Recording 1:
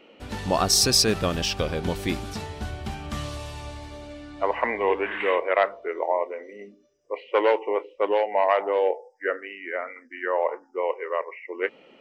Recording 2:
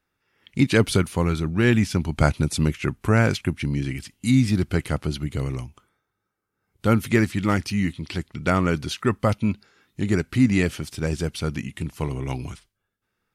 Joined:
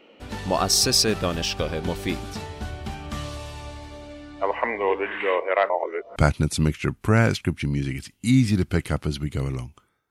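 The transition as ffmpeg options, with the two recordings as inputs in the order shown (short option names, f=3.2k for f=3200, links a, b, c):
-filter_complex "[0:a]apad=whole_dur=10.1,atrim=end=10.1,asplit=2[a][b];[a]atrim=end=5.702[c];[b]atrim=start=5.698:end=6.162,asetpts=PTS-STARTPTS,areverse[d];[1:a]atrim=start=2.158:end=6.1[e];[c][d]acrossfade=d=0.004:c1=hsin:c2=hsin[f];[f][e]acrossfade=d=0.004:c1=hsin:c2=hsin"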